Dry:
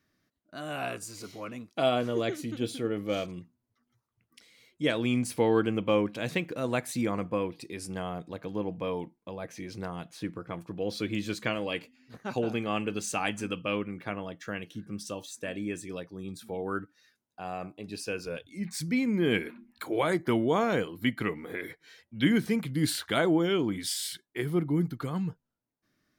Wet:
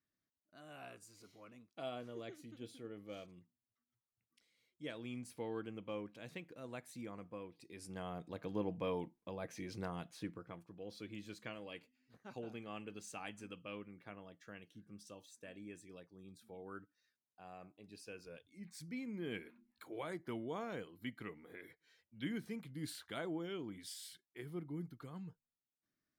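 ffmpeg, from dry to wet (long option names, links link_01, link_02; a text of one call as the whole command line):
ffmpeg -i in.wav -af "volume=-6dB,afade=type=in:start_time=7.54:duration=0.97:silence=0.237137,afade=type=out:start_time=9.96:duration=0.72:silence=0.281838" out.wav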